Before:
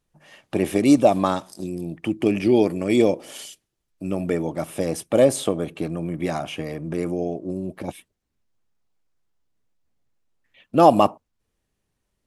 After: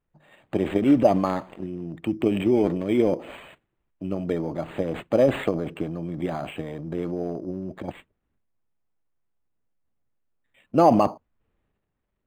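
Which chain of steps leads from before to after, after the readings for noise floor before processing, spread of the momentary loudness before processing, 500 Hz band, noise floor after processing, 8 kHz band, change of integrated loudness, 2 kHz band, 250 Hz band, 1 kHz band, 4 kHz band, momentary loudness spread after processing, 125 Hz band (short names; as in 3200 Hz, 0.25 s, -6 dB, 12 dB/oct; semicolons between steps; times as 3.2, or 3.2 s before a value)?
-78 dBFS, 15 LU, -3.0 dB, -78 dBFS, under -15 dB, -2.5 dB, -3.5 dB, -2.0 dB, -3.5 dB, -7.5 dB, 15 LU, -1.5 dB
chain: high shelf 7800 Hz -9.5 dB; transient shaper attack +4 dB, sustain +8 dB; decimation joined by straight lines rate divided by 8×; gain -4.5 dB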